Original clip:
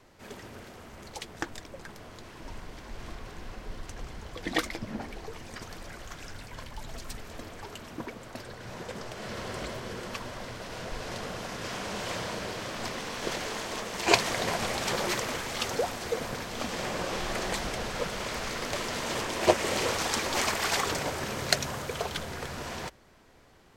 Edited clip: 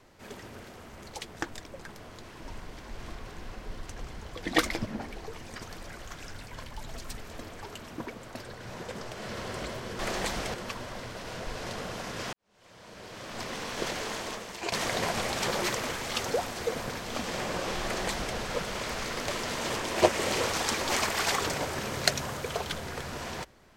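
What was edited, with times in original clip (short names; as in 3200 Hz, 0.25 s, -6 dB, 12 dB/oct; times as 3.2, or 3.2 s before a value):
4.57–4.86 gain +4.5 dB
11.78–13.02 fade in quadratic
13.65–14.17 fade out, to -16 dB
17.27–17.82 copy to 9.99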